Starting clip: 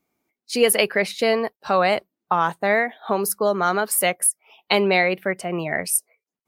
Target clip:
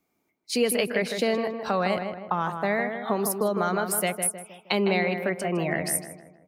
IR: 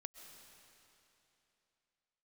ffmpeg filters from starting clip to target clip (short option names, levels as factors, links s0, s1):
-filter_complex "[0:a]acrossover=split=280[s0][s1];[s1]acompressor=threshold=0.0447:ratio=2.5[s2];[s0][s2]amix=inputs=2:normalize=0,asplit=2[s3][s4];[s4]adelay=157,lowpass=f=1900:p=1,volume=0.501,asplit=2[s5][s6];[s6]adelay=157,lowpass=f=1900:p=1,volume=0.46,asplit=2[s7][s8];[s8]adelay=157,lowpass=f=1900:p=1,volume=0.46,asplit=2[s9][s10];[s10]adelay=157,lowpass=f=1900:p=1,volume=0.46,asplit=2[s11][s12];[s12]adelay=157,lowpass=f=1900:p=1,volume=0.46,asplit=2[s13][s14];[s14]adelay=157,lowpass=f=1900:p=1,volume=0.46[s15];[s3][s5][s7][s9][s11][s13][s15]amix=inputs=7:normalize=0"